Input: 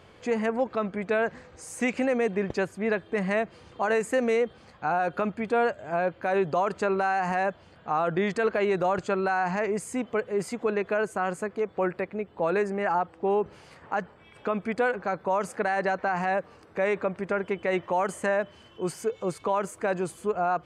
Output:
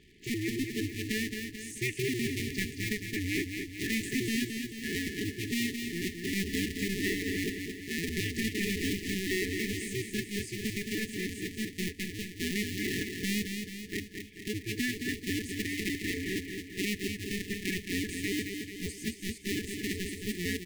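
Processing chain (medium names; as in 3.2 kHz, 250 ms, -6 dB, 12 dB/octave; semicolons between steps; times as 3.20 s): cycle switcher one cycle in 2, inverted; feedback delay 219 ms, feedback 55%, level -6 dB; FFT band-reject 450–1700 Hz; trim -4 dB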